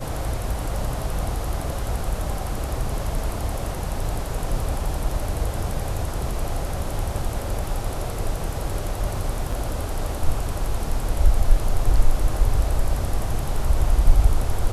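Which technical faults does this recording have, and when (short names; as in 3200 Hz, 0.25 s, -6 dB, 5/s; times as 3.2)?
9.52 gap 4.3 ms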